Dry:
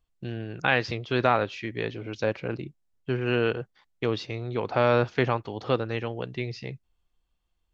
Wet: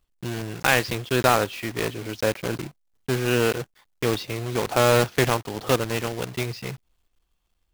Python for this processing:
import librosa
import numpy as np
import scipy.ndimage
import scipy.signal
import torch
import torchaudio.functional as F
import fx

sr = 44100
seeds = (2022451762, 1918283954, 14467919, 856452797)

y = fx.block_float(x, sr, bits=3)
y = y * librosa.db_to_amplitude(3.0)